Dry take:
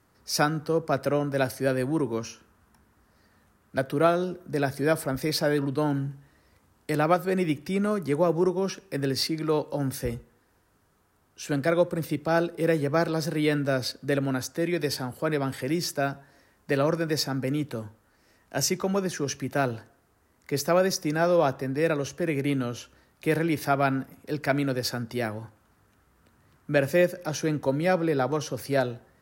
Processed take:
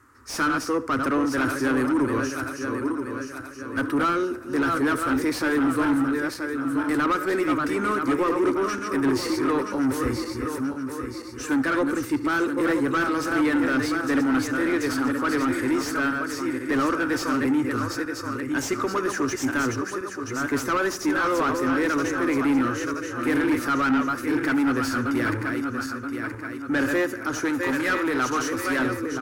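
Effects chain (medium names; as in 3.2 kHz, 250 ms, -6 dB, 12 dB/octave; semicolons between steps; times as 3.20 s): backward echo that repeats 488 ms, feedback 63%, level -7 dB; FFT filter 110 Hz 0 dB, 170 Hz -28 dB, 260 Hz -2 dB, 700 Hz -26 dB, 1.2 kHz -4 dB, 3.3 kHz -15 dB, 4.7 kHz -12 dB, 7.2 kHz -1 dB, 14 kHz -4 dB; overdrive pedal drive 24 dB, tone 1.3 kHz, clips at -18 dBFS; 27.45–28.79 s: tilt shelf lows -4 dB, about 890 Hz; feedback delay 72 ms, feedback 37%, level -19.5 dB; trim +5.5 dB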